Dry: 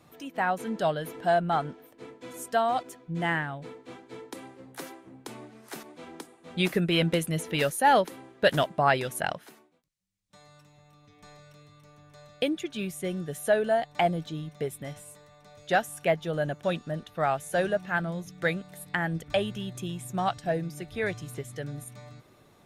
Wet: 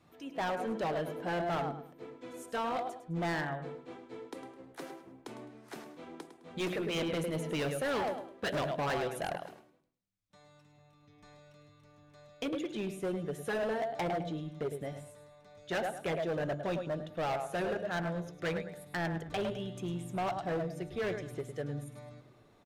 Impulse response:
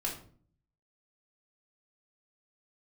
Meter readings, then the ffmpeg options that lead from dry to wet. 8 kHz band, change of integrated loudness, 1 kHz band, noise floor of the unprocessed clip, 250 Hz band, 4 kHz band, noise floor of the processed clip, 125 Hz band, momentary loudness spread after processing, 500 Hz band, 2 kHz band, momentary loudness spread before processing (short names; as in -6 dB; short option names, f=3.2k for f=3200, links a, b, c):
-10.0 dB, -7.5 dB, -8.5 dB, -59 dBFS, -5.0 dB, -8.5 dB, -63 dBFS, -6.0 dB, 15 LU, -6.5 dB, -8.5 dB, 20 LU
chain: -filter_complex "[0:a]highshelf=f=8.1k:g=-11,aecho=1:1:105|210|315:0.282|0.0761|0.0205,asplit=2[a][b];[1:a]atrim=start_sample=2205,lowshelf=f=350:g=6[c];[b][c]afir=irnorm=-1:irlink=0,volume=-19dB[d];[a][d]amix=inputs=2:normalize=0,afftfilt=real='re*lt(hypot(re,im),0.562)':imag='im*lt(hypot(re,im),0.562)':win_size=1024:overlap=0.75,adynamicequalizer=threshold=0.00708:dfrequency=520:dqfactor=0.82:tfrequency=520:tqfactor=0.82:attack=5:release=100:ratio=0.375:range=3.5:mode=boostabove:tftype=bell,volume=23.5dB,asoftclip=hard,volume=-23.5dB,volume=-6.5dB"